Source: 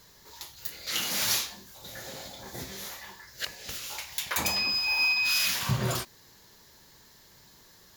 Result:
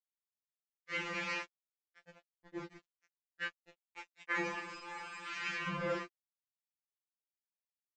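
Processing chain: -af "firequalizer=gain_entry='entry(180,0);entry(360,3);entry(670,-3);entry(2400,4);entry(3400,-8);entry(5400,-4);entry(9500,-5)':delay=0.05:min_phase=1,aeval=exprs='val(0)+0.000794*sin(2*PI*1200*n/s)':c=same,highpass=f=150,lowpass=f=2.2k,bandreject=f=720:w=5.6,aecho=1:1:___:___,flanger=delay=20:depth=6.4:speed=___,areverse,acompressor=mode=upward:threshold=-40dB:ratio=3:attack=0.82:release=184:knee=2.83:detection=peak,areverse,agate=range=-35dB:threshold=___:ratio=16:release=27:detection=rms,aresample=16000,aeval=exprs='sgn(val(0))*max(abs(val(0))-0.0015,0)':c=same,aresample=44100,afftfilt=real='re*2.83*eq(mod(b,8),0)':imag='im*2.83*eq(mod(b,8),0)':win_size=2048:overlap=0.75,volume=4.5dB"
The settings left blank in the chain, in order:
810, 0.075, 0.36, -45dB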